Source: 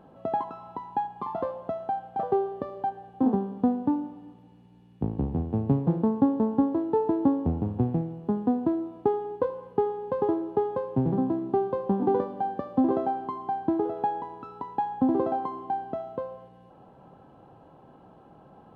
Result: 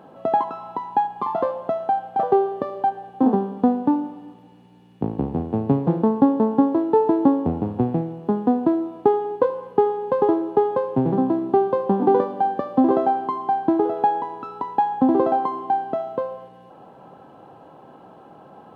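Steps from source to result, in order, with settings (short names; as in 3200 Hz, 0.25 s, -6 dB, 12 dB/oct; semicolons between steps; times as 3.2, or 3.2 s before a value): HPF 290 Hz 6 dB/oct; gain +9 dB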